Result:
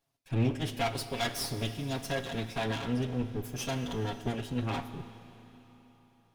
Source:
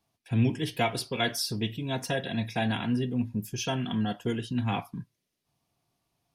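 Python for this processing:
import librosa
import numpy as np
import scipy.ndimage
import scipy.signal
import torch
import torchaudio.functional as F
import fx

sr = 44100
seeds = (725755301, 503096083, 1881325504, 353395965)

y = fx.lower_of_two(x, sr, delay_ms=7.3)
y = fx.rev_schroeder(y, sr, rt60_s=3.8, comb_ms=28, drr_db=11.0)
y = y * 10.0 ** (-2.5 / 20.0)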